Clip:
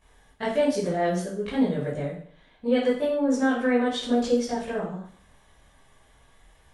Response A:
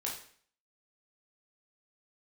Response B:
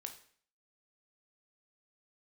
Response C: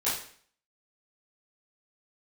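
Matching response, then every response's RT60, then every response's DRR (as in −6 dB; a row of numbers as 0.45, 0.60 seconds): C; 0.50, 0.50, 0.50 seconds; −3.5, 4.5, −12.0 decibels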